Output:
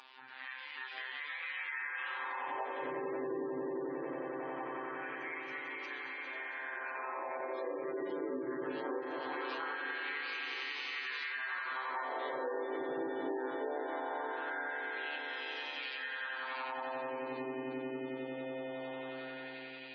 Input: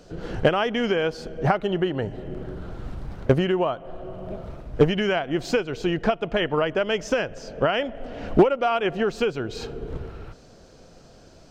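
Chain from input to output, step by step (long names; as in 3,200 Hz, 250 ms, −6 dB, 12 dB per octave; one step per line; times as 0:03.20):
brickwall limiter −17 dBFS, peak gain reduction 9.5 dB
phases set to zero 226 Hz
wrong playback speed 78 rpm record played at 45 rpm
delay with pitch and tempo change per echo 284 ms, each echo +2 semitones, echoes 3
flanger 0.38 Hz, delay 0.8 ms, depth 2.3 ms, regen +79%
mains-hum notches 50/100/150/200/250/300/350/400/450 Hz
echo that builds up and dies away 90 ms, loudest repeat 8, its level −7.5 dB
auto-filter high-pass sine 0.21 Hz 360–2,700 Hz
on a send: feedback delay with all-pass diffusion 479 ms, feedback 45%, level −8 dB
on the sum: gate on every frequency bin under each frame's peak −25 dB strong
downward compressor 4 to 1, threshold −45 dBFS, peak gain reduction 20 dB
level +6 dB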